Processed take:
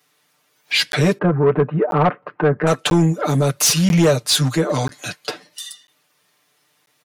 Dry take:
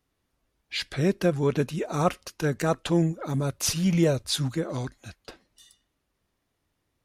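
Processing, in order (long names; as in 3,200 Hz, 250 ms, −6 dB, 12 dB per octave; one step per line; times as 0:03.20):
0:01.18–0:02.67: low-pass filter 1,500 Hz 24 dB per octave
noise reduction from a noise print of the clip's start 9 dB
Bessel high-pass filter 200 Hz, order 8
parametric band 290 Hz −5.5 dB 0.35 octaves
comb filter 6.7 ms, depth 95%
in parallel at +3 dB: downward compressor, threshold −33 dBFS, peak gain reduction 16.5 dB
on the sum: soft clipping −16.5 dBFS, distortion −14 dB
regular buffer underruns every 0.99 s, samples 512, zero, from 0:00.92
one half of a high-frequency compander encoder only
level +8 dB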